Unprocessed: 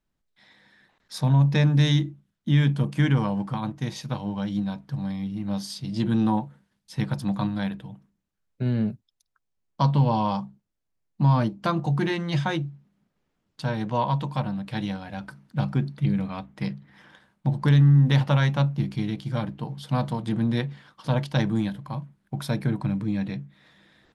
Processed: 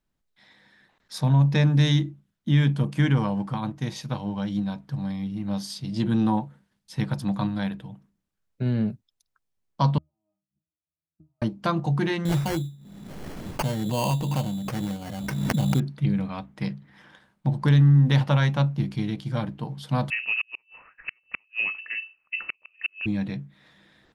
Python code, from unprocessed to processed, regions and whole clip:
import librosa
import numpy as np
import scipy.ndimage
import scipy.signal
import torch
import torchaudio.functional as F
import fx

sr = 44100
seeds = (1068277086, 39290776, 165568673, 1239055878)

y = fx.chain(x, sr, fx.highpass(hz=59.0, slope=12),
    fx.gate_flip(shuts_db=-29.0, range_db=-41),
    fx.octave_resonator(note='D#', decay_s=0.22), at=(9.98, 11.42))
y = fx.chain(y, sr, fx.peak_eq(hz=1300.0, db=-11.0, octaves=0.95),
    fx.sample_hold(seeds[0], rate_hz=3700.0, jitter_pct=0),
    fx.pre_swell(db_per_s=29.0), at=(12.25, 15.8))
y = fx.chain(y, sr, fx.highpass(hz=89.0, slope=12),
    fx.gate_flip(shuts_db=-16.0, range_db=-42),
    fx.freq_invert(carrier_hz=2800), at=(20.1, 23.06))